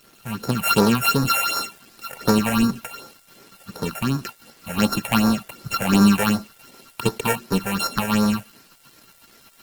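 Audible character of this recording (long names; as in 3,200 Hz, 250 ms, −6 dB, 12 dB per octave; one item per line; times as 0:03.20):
a buzz of ramps at a fixed pitch in blocks of 32 samples
phaser sweep stages 6, 2.7 Hz, lowest notch 290–2,900 Hz
a quantiser's noise floor 8 bits, dither none
Opus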